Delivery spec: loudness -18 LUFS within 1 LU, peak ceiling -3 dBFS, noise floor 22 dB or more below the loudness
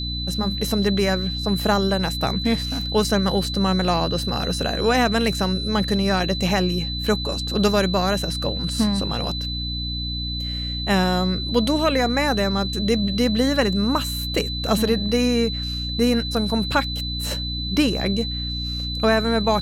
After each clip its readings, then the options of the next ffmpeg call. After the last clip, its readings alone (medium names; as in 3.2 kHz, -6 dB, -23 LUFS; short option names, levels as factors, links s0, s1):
hum 60 Hz; highest harmonic 300 Hz; hum level -27 dBFS; steady tone 4 kHz; tone level -28 dBFS; loudness -21.5 LUFS; peak level -6.0 dBFS; loudness target -18.0 LUFS
-> -af "bandreject=f=60:t=h:w=4,bandreject=f=120:t=h:w=4,bandreject=f=180:t=h:w=4,bandreject=f=240:t=h:w=4,bandreject=f=300:t=h:w=4"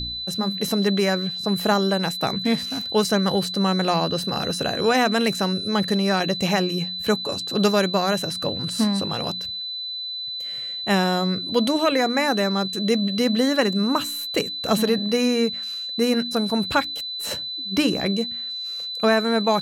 hum not found; steady tone 4 kHz; tone level -28 dBFS
-> -af "bandreject=f=4000:w=30"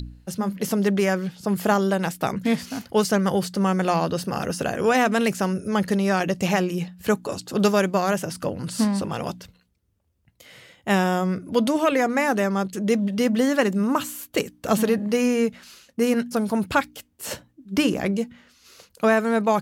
steady tone not found; loudness -23.0 LUFS; peak level -7.0 dBFS; loudness target -18.0 LUFS
-> -af "volume=1.78,alimiter=limit=0.708:level=0:latency=1"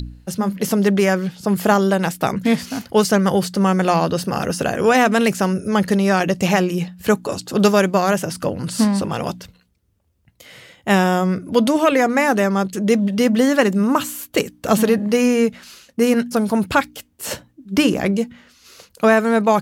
loudness -18.0 LUFS; peak level -3.0 dBFS; noise floor -61 dBFS